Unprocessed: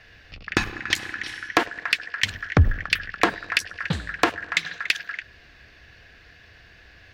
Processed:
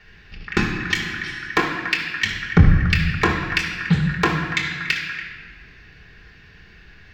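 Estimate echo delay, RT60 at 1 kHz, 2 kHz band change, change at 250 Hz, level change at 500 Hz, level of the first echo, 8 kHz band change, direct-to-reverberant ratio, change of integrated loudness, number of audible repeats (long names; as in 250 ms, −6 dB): no echo audible, 1.4 s, +3.0 dB, +8.5 dB, +2.0 dB, no echo audible, −1.5 dB, −2.0 dB, +4.0 dB, no echo audible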